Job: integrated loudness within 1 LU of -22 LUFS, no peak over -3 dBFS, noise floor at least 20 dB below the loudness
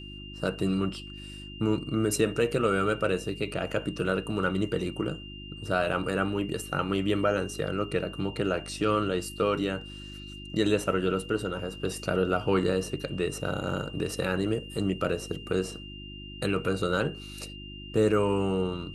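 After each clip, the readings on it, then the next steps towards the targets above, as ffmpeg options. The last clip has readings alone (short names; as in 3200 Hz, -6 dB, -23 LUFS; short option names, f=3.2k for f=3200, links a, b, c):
hum 50 Hz; harmonics up to 350 Hz; hum level -42 dBFS; steady tone 2800 Hz; tone level -44 dBFS; loudness -29.0 LUFS; peak -12.5 dBFS; loudness target -22.0 LUFS
-> -af "bandreject=f=50:t=h:w=4,bandreject=f=100:t=h:w=4,bandreject=f=150:t=h:w=4,bandreject=f=200:t=h:w=4,bandreject=f=250:t=h:w=4,bandreject=f=300:t=h:w=4,bandreject=f=350:t=h:w=4"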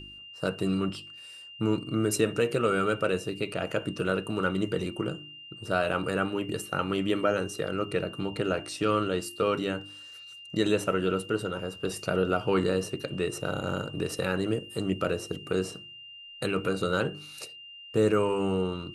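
hum none; steady tone 2800 Hz; tone level -44 dBFS
-> -af "bandreject=f=2.8k:w=30"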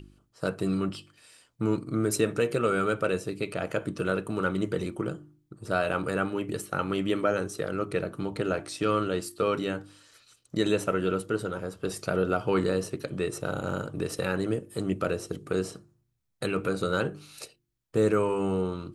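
steady tone none; loudness -29.5 LUFS; peak -12.0 dBFS; loudness target -22.0 LUFS
-> -af "volume=7.5dB"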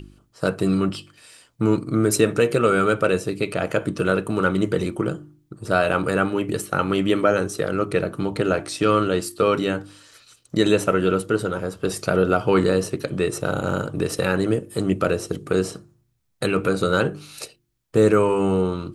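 loudness -22.0 LUFS; peak -4.5 dBFS; noise floor -64 dBFS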